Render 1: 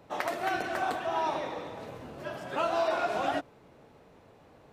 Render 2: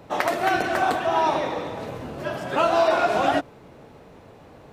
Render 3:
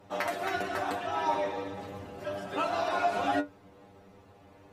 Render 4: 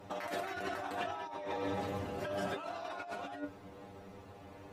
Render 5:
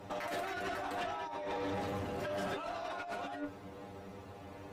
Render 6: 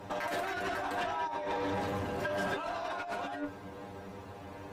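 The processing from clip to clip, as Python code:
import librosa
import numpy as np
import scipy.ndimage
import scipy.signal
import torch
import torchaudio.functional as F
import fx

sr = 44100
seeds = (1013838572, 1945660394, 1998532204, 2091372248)

y1 = fx.low_shelf(x, sr, hz=320.0, db=2.5)
y1 = F.gain(torch.from_numpy(y1), 8.5).numpy()
y2 = fx.stiff_resonator(y1, sr, f0_hz=96.0, decay_s=0.22, stiffness=0.002)
y3 = fx.over_compress(y2, sr, threshold_db=-38.0, ratio=-1.0)
y3 = F.gain(torch.from_numpy(y3), -2.0).numpy()
y4 = fx.tube_stage(y3, sr, drive_db=36.0, bias=0.25)
y4 = F.gain(torch.from_numpy(y4), 3.5).numpy()
y5 = fx.small_body(y4, sr, hz=(980.0, 1600.0), ring_ms=45, db=8)
y5 = F.gain(torch.from_numpy(y5), 3.0).numpy()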